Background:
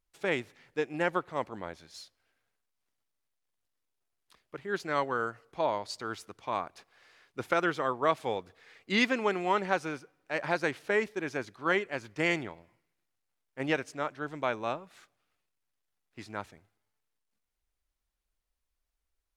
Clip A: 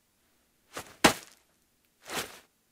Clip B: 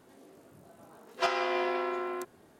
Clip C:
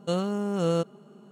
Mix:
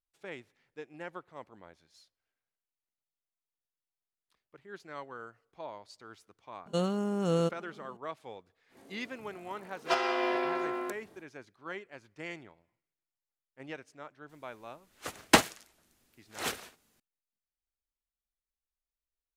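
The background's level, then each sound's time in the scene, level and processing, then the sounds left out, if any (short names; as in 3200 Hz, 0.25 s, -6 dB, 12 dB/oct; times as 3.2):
background -13.5 dB
6.66 add C -3 dB
8.68 add B, fades 0.10 s
14.29 add A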